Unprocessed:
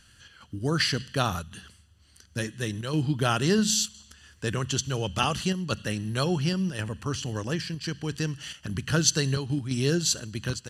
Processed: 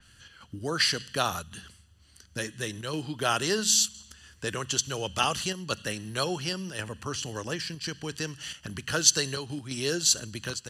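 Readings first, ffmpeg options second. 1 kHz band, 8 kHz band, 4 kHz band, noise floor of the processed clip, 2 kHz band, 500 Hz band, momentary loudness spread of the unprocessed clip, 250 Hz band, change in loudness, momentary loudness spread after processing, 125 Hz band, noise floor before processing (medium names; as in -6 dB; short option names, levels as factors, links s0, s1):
0.0 dB, +3.5 dB, +1.5 dB, -58 dBFS, 0.0 dB, -2.0 dB, 11 LU, -7.5 dB, -0.5 dB, 15 LU, -9.5 dB, -58 dBFS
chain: -filter_complex "[0:a]acrossover=split=350|1400|5600[s0][s1][s2][s3];[s0]acompressor=threshold=0.0126:ratio=6[s4];[s4][s1][s2][s3]amix=inputs=4:normalize=0,adynamicequalizer=threshold=0.0141:dfrequency=4300:dqfactor=0.7:tfrequency=4300:tqfactor=0.7:attack=5:release=100:ratio=0.375:range=2:mode=boostabove:tftype=highshelf"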